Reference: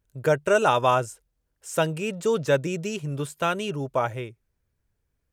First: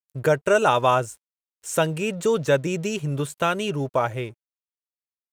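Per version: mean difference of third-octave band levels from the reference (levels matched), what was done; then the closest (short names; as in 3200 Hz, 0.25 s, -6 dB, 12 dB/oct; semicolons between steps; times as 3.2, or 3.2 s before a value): 1.5 dB: notch 5000 Hz, Q 12; in parallel at 0 dB: compressor, threshold -31 dBFS, peak gain reduction 15 dB; on the sum: crossover distortion -51.5 dBFS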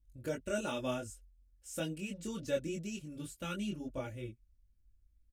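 5.0 dB: passive tone stack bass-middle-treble 10-0-1; comb 3.5 ms, depth 81%; chorus voices 4, 0.97 Hz, delay 22 ms, depth 3 ms; gain +12 dB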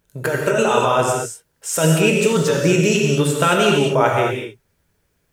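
10.0 dB: low shelf 110 Hz -11.5 dB; negative-ratio compressor -26 dBFS, ratio -1; non-linear reverb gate 0.26 s flat, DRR -1 dB; gain +8.5 dB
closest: first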